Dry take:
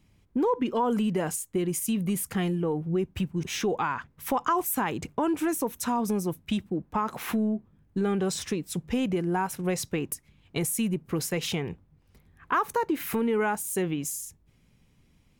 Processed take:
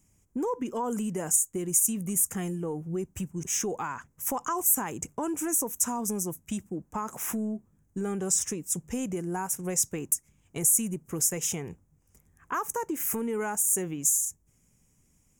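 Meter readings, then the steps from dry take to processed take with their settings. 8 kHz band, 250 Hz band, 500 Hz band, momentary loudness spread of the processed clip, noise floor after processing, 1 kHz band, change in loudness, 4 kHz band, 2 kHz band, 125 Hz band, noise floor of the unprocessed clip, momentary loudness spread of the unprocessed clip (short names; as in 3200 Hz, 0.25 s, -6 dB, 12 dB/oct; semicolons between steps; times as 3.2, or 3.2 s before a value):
+9.5 dB, -5.0 dB, -5.0 dB, 12 LU, -67 dBFS, -5.5 dB, +0.5 dB, -6.0 dB, -6.5 dB, -5.0 dB, -64 dBFS, 6 LU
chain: resonant high shelf 5200 Hz +10.5 dB, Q 3; notch 4300 Hz, Q 5.1; gain -5 dB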